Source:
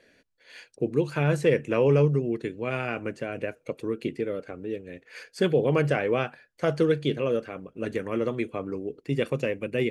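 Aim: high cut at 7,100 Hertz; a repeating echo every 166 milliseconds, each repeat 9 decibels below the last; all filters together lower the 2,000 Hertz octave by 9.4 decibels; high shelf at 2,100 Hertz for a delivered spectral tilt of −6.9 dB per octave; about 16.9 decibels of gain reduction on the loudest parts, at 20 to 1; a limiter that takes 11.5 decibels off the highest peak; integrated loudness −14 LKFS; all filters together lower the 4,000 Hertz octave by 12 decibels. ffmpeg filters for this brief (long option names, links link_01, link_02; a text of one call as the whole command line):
ffmpeg -i in.wav -af "lowpass=7100,equalizer=frequency=2000:width_type=o:gain=-6.5,highshelf=frequency=2100:gain=-8.5,equalizer=frequency=4000:width_type=o:gain=-5,acompressor=threshold=-34dB:ratio=20,alimiter=level_in=8.5dB:limit=-24dB:level=0:latency=1,volume=-8.5dB,aecho=1:1:166|332|498|664:0.355|0.124|0.0435|0.0152,volume=29dB" out.wav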